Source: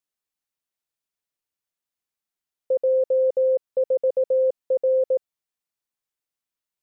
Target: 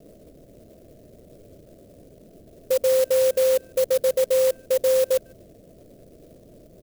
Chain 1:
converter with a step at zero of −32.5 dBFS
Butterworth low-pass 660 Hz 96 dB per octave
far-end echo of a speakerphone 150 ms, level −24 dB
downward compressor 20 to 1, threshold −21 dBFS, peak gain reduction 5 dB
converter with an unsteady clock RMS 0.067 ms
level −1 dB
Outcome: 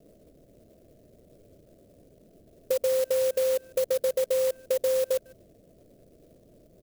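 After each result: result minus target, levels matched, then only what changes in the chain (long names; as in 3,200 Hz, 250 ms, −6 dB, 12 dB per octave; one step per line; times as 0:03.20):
downward compressor: peak gain reduction +5 dB; converter with a step at zero: distortion −7 dB
remove: downward compressor 20 to 1, threshold −21 dBFS, peak gain reduction 5 dB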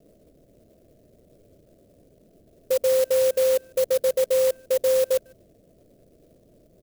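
converter with a step at zero: distortion −7 dB
change: converter with a step at zero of −25 dBFS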